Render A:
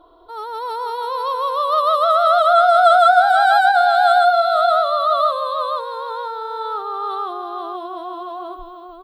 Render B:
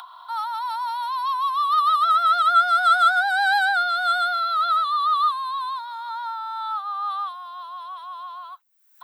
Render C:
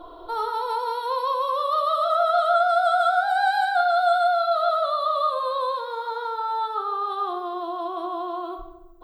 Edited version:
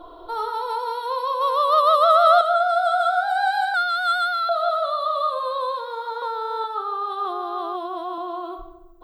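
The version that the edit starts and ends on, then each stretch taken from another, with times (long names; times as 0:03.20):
C
0:01.41–0:02.41: punch in from A
0:03.74–0:04.49: punch in from B
0:06.22–0:06.64: punch in from A
0:07.25–0:08.18: punch in from A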